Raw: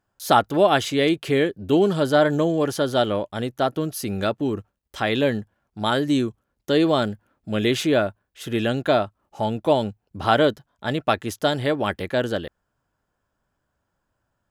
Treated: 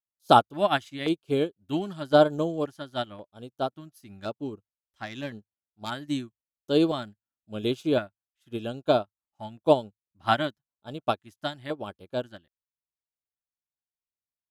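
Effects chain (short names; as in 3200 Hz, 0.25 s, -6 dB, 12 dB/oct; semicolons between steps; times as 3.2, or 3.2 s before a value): 3.99–5.91 self-modulated delay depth 0.062 ms; LFO notch square 0.94 Hz 460–1900 Hz; upward expander 2.5:1, over -38 dBFS; gain +1.5 dB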